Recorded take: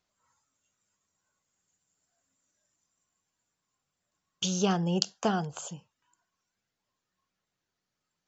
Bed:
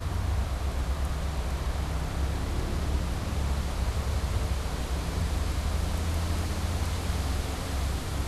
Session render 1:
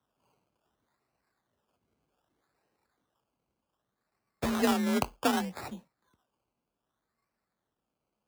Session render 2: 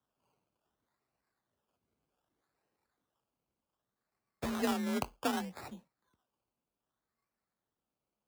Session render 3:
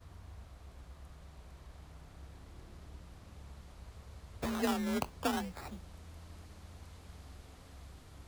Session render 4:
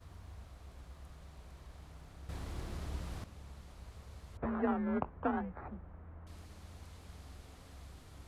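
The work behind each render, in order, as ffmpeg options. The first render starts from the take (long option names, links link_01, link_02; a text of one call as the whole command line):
ffmpeg -i in.wav -af "acrusher=samples=19:mix=1:aa=0.000001:lfo=1:lforange=11.4:lforate=0.65,afreqshift=41" out.wav
ffmpeg -i in.wav -af "volume=-6dB" out.wav
ffmpeg -i in.wav -i bed.wav -filter_complex "[1:a]volume=-22.5dB[link_01];[0:a][link_01]amix=inputs=2:normalize=0" out.wav
ffmpeg -i in.wav -filter_complex "[0:a]asettb=1/sr,asplit=3[link_01][link_02][link_03];[link_01]atrim=end=4.374[link_04];[link_02]atrim=start=4.37:end=6.27,asetpts=PTS-STARTPTS,afade=type=in:duration=0.004:curve=qsin,afade=type=out:start_time=1.896:duration=0.004:curve=qsin,lowpass=frequency=1700:width=0.5412,lowpass=frequency=1700:width=1.3066[link_05];[link_03]atrim=start=6.266[link_06];[link_04][link_05]acrossfade=duration=0.004:curve1=hsin:curve2=qsin[link_07];[link_07][link_06]acrossfade=duration=0.004:curve1=qsin:curve2=hsin,asplit=3[link_08][link_09][link_10];[link_08]atrim=end=2.292[link_11];[link_09]atrim=start=2.288:end=3.242,asetpts=PTS-STARTPTS,volume=10dB[link_12];[link_10]atrim=start=3.238[link_13];[link_11][link_12]acrossfade=duration=0.004:curve1=hsin:curve2=hsin[link_14];[link_14][link_13]acrossfade=duration=0.004:curve1=hsin:curve2=hsin" out.wav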